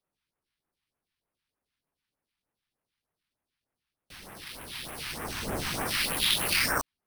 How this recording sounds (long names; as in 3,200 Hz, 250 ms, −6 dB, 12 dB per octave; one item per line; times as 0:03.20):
aliases and images of a low sample rate 7,100 Hz, jitter 0%
phaser sweep stages 2, 3.3 Hz, lowest notch 460–4,300 Hz